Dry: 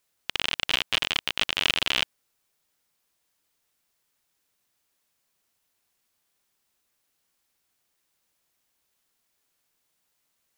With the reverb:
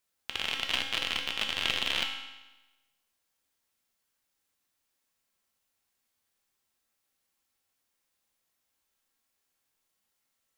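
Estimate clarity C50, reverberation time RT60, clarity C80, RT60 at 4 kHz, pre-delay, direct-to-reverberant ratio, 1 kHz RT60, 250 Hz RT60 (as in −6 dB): 5.0 dB, 1.1 s, 7.0 dB, 1.0 s, 4 ms, 1.5 dB, 1.1 s, 1.1 s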